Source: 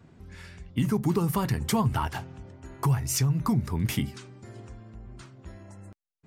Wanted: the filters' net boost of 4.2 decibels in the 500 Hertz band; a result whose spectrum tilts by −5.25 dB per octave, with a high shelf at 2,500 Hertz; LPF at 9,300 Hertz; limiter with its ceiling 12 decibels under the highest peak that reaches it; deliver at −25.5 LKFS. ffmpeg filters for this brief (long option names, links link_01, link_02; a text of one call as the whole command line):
ffmpeg -i in.wav -af "lowpass=9300,equalizer=frequency=500:width_type=o:gain=5.5,highshelf=frequency=2500:gain=4,volume=8.5dB,alimiter=limit=-15dB:level=0:latency=1" out.wav